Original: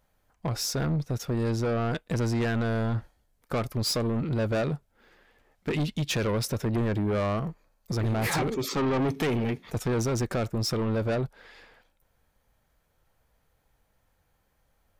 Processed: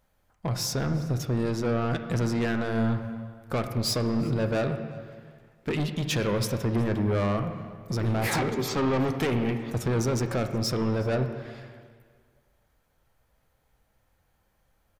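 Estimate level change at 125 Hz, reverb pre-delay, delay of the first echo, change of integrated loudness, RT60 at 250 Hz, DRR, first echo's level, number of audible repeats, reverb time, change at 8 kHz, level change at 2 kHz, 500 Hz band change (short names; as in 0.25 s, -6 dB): +0.5 dB, 5 ms, 0.366 s, +1.0 dB, 1.8 s, 7.0 dB, -22.5 dB, 1, 1.8 s, 0.0 dB, +1.0 dB, +0.5 dB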